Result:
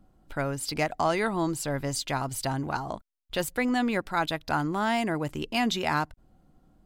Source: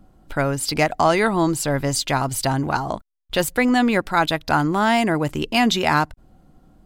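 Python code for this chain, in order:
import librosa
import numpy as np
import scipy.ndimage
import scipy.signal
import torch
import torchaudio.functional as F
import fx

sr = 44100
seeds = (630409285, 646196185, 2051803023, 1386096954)

y = x * librosa.db_to_amplitude(-8.5)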